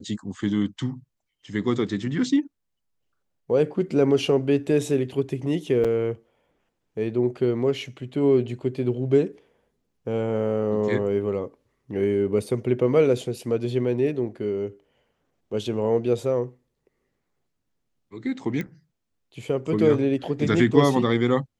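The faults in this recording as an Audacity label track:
5.840000	5.850000	drop-out 6.2 ms
18.610000	18.610000	click −18 dBFS

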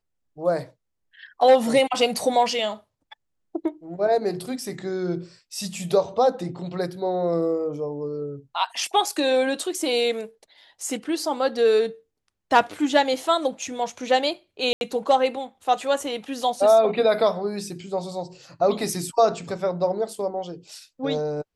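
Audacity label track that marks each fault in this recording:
14.730000	14.810000	drop-out 81 ms

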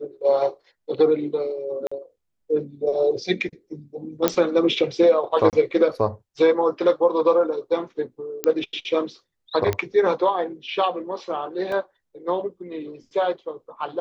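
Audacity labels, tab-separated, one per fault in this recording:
1.870000	1.920000	drop-out 45 ms
4.280000	4.280000	click −3 dBFS
5.500000	5.530000	drop-out 28 ms
8.440000	8.440000	click −6 dBFS
9.730000	9.730000	click −10 dBFS
11.720000	11.720000	drop-out 2.7 ms

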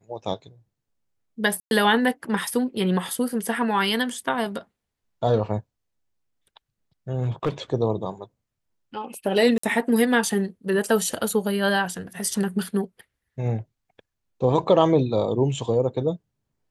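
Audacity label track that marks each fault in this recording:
1.600000	1.710000	drop-out 111 ms
7.220000	7.500000	clipping −18 dBFS
9.580000	9.630000	drop-out 54 ms

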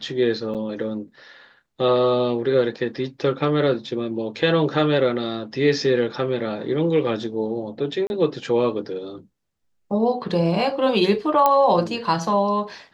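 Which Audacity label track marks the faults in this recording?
0.540000	0.550000	drop-out 7.4 ms
8.070000	8.100000	drop-out 31 ms
11.460000	11.460000	click −5 dBFS

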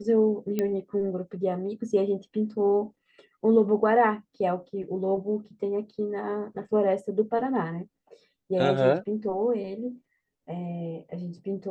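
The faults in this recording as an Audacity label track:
0.590000	0.590000	click −14 dBFS

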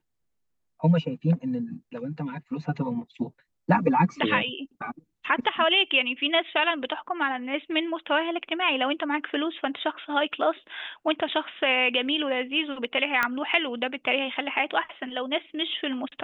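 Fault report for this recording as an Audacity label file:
13.230000	13.230000	click −10 dBFS

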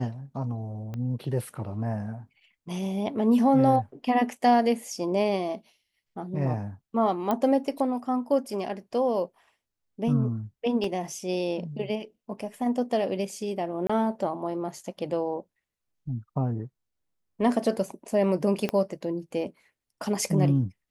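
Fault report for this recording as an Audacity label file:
0.940000	0.940000	click −24 dBFS
7.310000	7.310000	click −14 dBFS
10.840000	10.840000	drop-out 3.1 ms
13.870000	13.890000	drop-out 25 ms
18.690000	18.690000	click −14 dBFS

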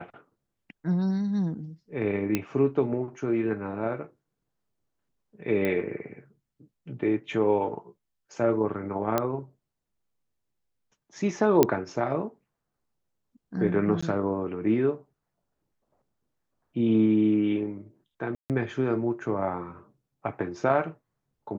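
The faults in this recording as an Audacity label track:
2.350000	2.350000	click −11 dBFS
5.650000	5.650000	click −16 dBFS
9.180000	9.180000	click −10 dBFS
11.630000	11.630000	click −5 dBFS
14.010000	14.030000	drop-out 15 ms
18.350000	18.500000	drop-out 148 ms

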